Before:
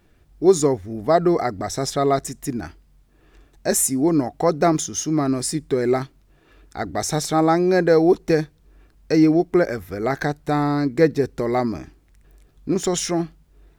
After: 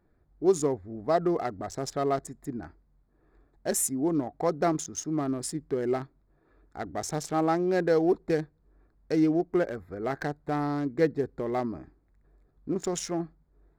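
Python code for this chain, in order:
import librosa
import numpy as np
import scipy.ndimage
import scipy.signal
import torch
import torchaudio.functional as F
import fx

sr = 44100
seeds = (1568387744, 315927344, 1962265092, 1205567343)

y = fx.wiener(x, sr, points=15)
y = fx.low_shelf(y, sr, hz=180.0, db=-3.5)
y = F.gain(torch.from_numpy(y), -7.5).numpy()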